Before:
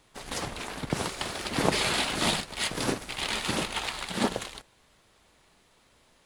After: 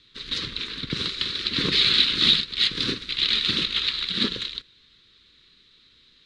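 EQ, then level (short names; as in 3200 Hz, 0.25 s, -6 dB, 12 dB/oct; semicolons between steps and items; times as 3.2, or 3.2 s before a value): Butterworth band-stop 740 Hz, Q 0.85; synth low-pass 3900 Hz, resonance Q 6.9; 0.0 dB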